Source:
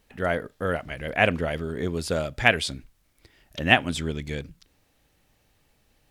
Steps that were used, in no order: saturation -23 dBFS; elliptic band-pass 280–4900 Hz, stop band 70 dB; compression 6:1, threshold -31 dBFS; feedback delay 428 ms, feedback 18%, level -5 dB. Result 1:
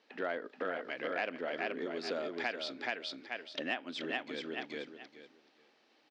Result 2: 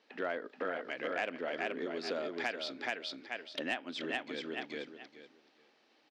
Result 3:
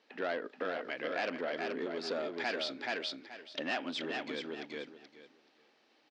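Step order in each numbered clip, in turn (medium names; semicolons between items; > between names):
feedback delay > compression > saturation > elliptic band-pass; feedback delay > compression > elliptic band-pass > saturation; saturation > feedback delay > compression > elliptic band-pass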